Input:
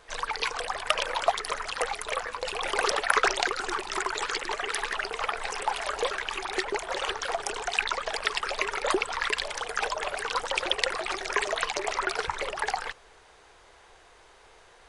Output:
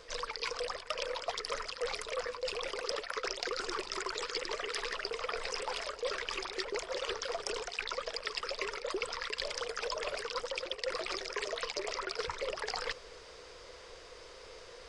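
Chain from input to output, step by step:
thirty-one-band graphic EQ 500 Hz +10 dB, 800 Hz −11 dB, 1,600 Hz −4 dB, 5,000 Hz +10 dB, 10,000 Hz −9 dB
reversed playback
downward compressor 12 to 1, threshold −36 dBFS, peak gain reduction 20 dB
reversed playback
level +3 dB

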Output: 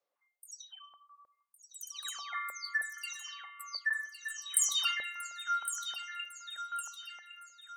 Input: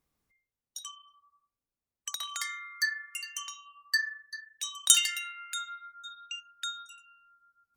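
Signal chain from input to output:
every frequency bin delayed by itself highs early, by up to 329 ms
feedback echo with a high-pass in the loop 1,110 ms, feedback 46%, high-pass 1,200 Hz, level −9.5 dB
high-pass on a step sequencer 6.4 Hz 560–1,600 Hz
level −5 dB

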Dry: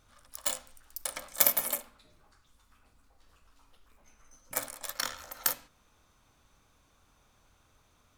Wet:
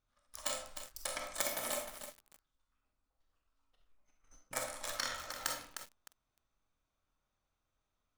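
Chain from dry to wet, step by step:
noise gate −55 dBFS, range −20 dB
parametric band 14,000 Hz −13 dB 0.65 octaves
downward compressor 10 to 1, threshold −31 dBFS, peak gain reduction 9.5 dB
convolution reverb RT60 0.40 s, pre-delay 5 ms, DRR 3 dB
feedback echo at a low word length 306 ms, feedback 35%, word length 7 bits, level −7.5 dB
level −1 dB

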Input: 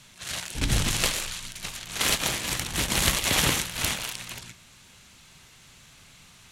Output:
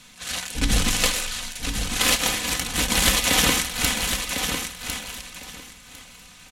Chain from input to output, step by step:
comb filter 4 ms, depth 61%
repeating echo 1,052 ms, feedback 18%, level −7 dB
level +2.5 dB

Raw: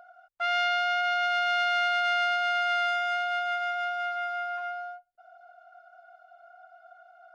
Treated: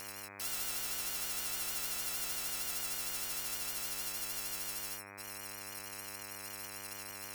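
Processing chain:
samples in bit-reversed order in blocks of 128 samples
pitch vibrato 6.5 Hz 58 cents
hum with harmonics 100 Hz, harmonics 25, −51 dBFS −1 dB per octave
every bin compressed towards the loudest bin 4 to 1
level −8 dB

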